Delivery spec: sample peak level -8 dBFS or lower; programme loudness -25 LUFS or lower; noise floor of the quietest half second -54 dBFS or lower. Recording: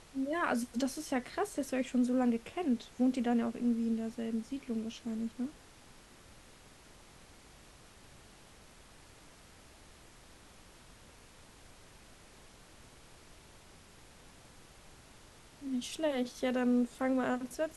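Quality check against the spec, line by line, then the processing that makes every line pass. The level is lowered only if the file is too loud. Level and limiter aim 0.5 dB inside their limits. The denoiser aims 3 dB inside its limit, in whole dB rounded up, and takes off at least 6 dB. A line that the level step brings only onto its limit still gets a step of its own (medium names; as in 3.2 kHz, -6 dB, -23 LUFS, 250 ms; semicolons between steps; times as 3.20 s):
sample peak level -18.5 dBFS: pass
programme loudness -34.0 LUFS: pass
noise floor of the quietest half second -57 dBFS: pass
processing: none needed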